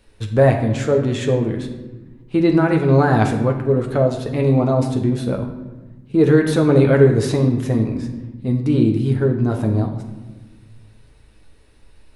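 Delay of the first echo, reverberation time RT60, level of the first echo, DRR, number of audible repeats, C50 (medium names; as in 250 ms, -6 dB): no echo, 1.2 s, no echo, 2.0 dB, no echo, 7.5 dB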